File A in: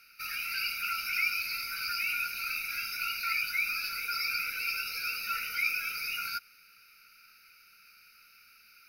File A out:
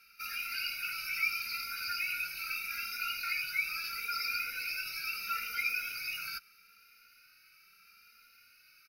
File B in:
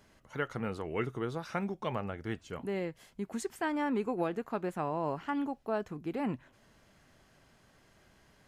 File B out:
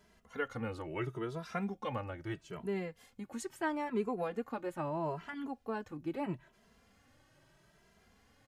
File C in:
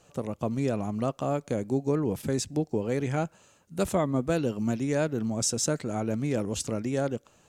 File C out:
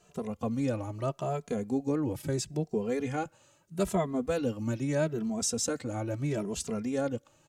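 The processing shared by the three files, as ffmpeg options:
-filter_complex "[0:a]asplit=2[link_01][link_02];[link_02]adelay=2.6,afreqshift=0.77[link_03];[link_01][link_03]amix=inputs=2:normalize=1"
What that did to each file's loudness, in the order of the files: −3.0, −3.0, −3.0 LU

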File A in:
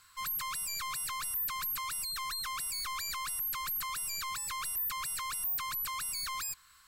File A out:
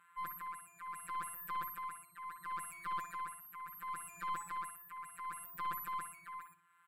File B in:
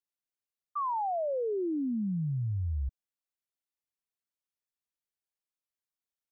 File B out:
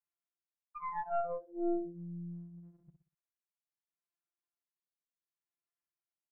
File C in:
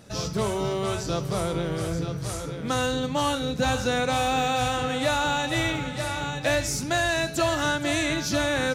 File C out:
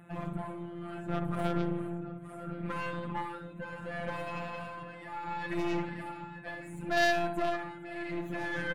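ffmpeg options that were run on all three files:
-filter_complex "[0:a]equalizer=frequency=450:width_type=o:width=0.37:gain=-14.5,asplit=2[link_01][link_02];[link_02]alimiter=limit=-23dB:level=0:latency=1:release=14,volume=2.5dB[link_03];[link_01][link_03]amix=inputs=2:normalize=0,afftfilt=real='hypot(re,im)*cos(PI*b)':imag='0':win_size=1024:overlap=0.75,tremolo=f=0.7:d=0.66,highpass=110,lowpass=7600,asoftclip=type=tanh:threshold=-14dB,asuperstop=centerf=5200:order=4:qfactor=0.61,asplit=2[link_04][link_05];[link_05]adelay=61,lowpass=frequency=2300:poles=1,volume=-7dB,asplit=2[link_06][link_07];[link_07]adelay=61,lowpass=frequency=2300:poles=1,volume=0.36,asplit=2[link_08][link_09];[link_09]adelay=61,lowpass=frequency=2300:poles=1,volume=0.36,asplit=2[link_10][link_11];[link_11]adelay=61,lowpass=frequency=2300:poles=1,volume=0.36[link_12];[link_06][link_08][link_10][link_12]amix=inputs=4:normalize=0[link_13];[link_04][link_13]amix=inputs=2:normalize=0,aeval=exprs='0.211*(cos(1*acos(clip(val(0)/0.211,-1,1)))-cos(1*PI/2))+0.106*(cos(2*acos(clip(val(0)/0.211,-1,1)))-cos(2*PI/2))+0.0841*(cos(4*acos(clip(val(0)/0.211,-1,1)))-cos(4*PI/2))':channel_layout=same,volume=-5dB"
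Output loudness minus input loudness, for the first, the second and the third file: −9.5, −6.0, −10.0 LU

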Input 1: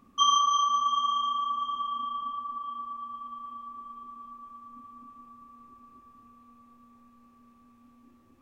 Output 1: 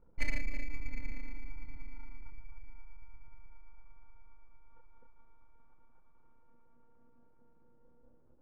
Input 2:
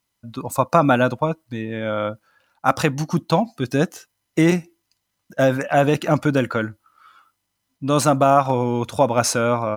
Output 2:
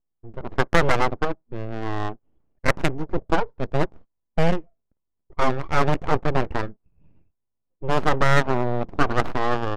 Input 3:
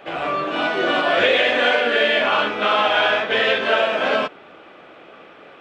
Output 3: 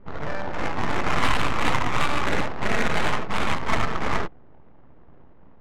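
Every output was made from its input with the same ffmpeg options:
-af "aeval=exprs='abs(val(0))':channel_layout=same,adynamicsmooth=sensitivity=1:basefreq=540"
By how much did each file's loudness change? −17.0, −4.5, −8.0 LU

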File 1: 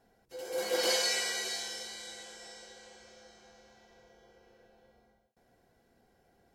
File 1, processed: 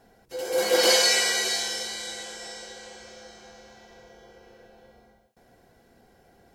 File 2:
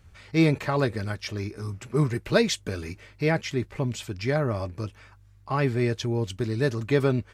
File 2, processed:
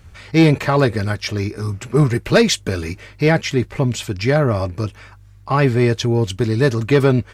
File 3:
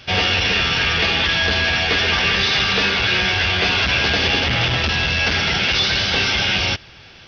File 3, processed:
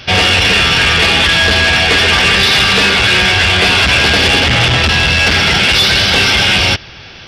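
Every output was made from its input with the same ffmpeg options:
-af "aeval=exprs='0.422*sin(PI/2*1.58*val(0)/0.422)':channel_layout=same,volume=2dB"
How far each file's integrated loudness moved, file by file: +9.5, +9.0, +8.0 LU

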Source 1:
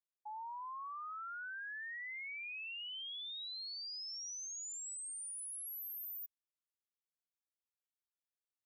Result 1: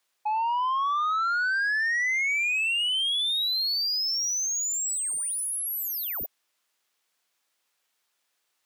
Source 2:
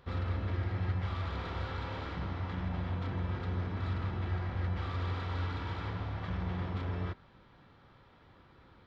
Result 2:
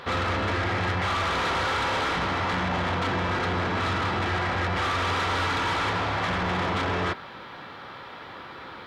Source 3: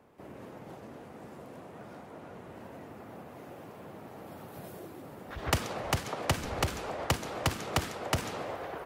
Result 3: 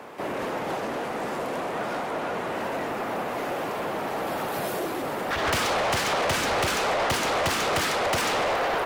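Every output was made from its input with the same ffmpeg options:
-filter_complex "[0:a]asplit=2[link_01][link_02];[link_02]highpass=frequency=720:poles=1,volume=32dB,asoftclip=type=tanh:threshold=-15dB[link_03];[link_01][link_03]amix=inputs=2:normalize=0,lowpass=frequency=5900:poles=1,volume=-6dB,volume=-2dB"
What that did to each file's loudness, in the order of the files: +18.0, +10.5, +7.5 LU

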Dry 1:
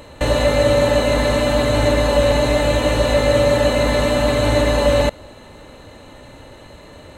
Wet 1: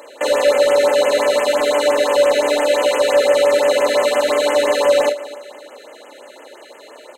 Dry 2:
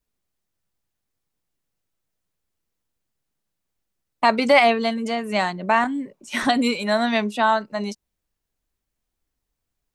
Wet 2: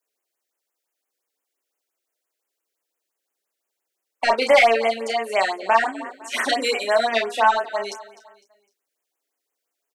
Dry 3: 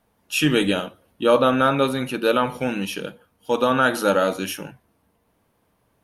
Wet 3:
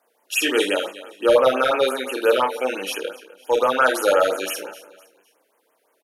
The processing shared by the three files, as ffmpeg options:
-filter_complex "[0:a]highpass=frequency=380:width=0.5412,highpass=frequency=380:width=1.3066,asplit=2[link_01][link_02];[link_02]aecho=0:1:253|506|759:0.126|0.0478|0.0182[link_03];[link_01][link_03]amix=inputs=2:normalize=0,acontrast=81,asplit=2[link_04][link_05];[link_05]aecho=0:1:31|48:0.562|0.237[link_06];[link_04][link_06]amix=inputs=2:normalize=0,afftfilt=real='re*(1-between(b*sr/1024,880*pow(4700/880,0.5+0.5*sin(2*PI*5.8*pts/sr))/1.41,880*pow(4700/880,0.5+0.5*sin(2*PI*5.8*pts/sr))*1.41))':imag='im*(1-between(b*sr/1024,880*pow(4700/880,0.5+0.5*sin(2*PI*5.8*pts/sr))/1.41,880*pow(4700/880,0.5+0.5*sin(2*PI*5.8*pts/sr))*1.41))':win_size=1024:overlap=0.75,volume=-4.5dB"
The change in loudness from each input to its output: +1.0, +0.5, +0.5 LU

